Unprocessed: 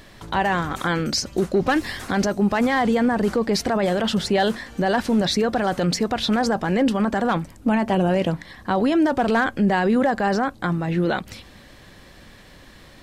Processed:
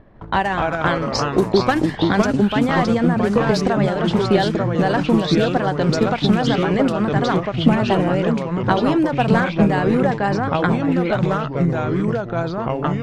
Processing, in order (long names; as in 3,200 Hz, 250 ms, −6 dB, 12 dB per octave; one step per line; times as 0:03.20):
transient designer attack +8 dB, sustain −3 dB
low-pass that shuts in the quiet parts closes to 880 Hz, open at −12.5 dBFS
delay with pitch and tempo change per echo 191 ms, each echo −3 semitones, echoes 3
level −1 dB